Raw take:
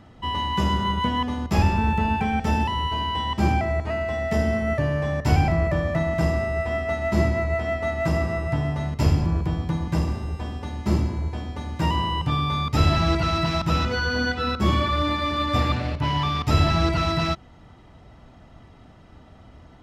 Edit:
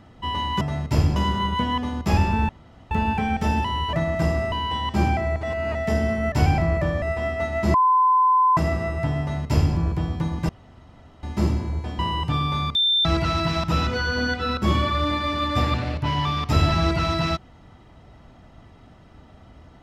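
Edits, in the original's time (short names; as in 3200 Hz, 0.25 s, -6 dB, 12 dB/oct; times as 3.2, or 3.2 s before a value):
1.94 insert room tone 0.42 s
3.87–4.19 reverse
4.76–5.22 cut
5.92–6.51 move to 2.96
7.23–8.06 bleep 1020 Hz -14 dBFS
8.69–9.24 copy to 0.61
9.98–10.72 room tone
11.48–11.97 cut
12.73–13.03 bleep 3570 Hz -16.5 dBFS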